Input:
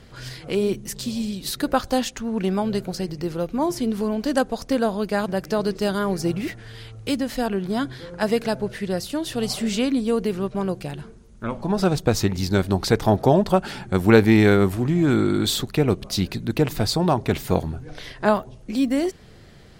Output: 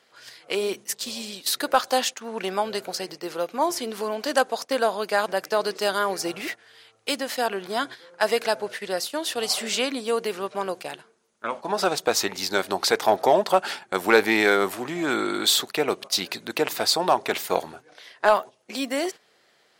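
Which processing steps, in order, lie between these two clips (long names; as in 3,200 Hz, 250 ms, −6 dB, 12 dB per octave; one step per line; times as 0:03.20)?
noise gate −32 dBFS, range −11 dB
high-pass filter 600 Hz 12 dB per octave
in parallel at −4 dB: gain into a clipping stage and back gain 16 dB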